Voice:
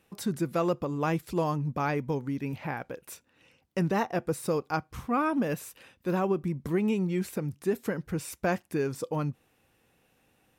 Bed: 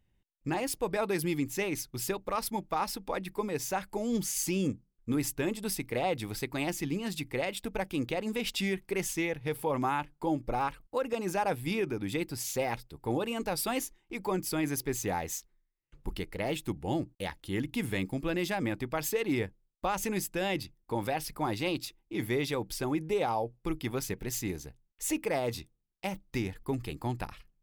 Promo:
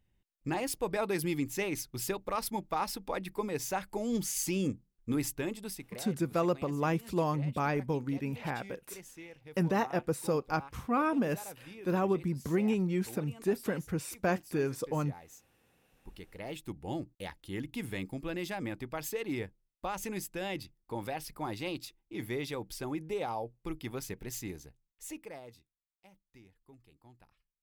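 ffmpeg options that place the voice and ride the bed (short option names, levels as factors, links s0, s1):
-filter_complex "[0:a]adelay=5800,volume=0.794[s0];[1:a]volume=3.35,afade=t=out:st=5.2:d=0.85:silence=0.158489,afade=t=in:st=15.91:d=0.99:silence=0.251189,afade=t=out:st=24.39:d=1.25:silence=0.1[s1];[s0][s1]amix=inputs=2:normalize=0"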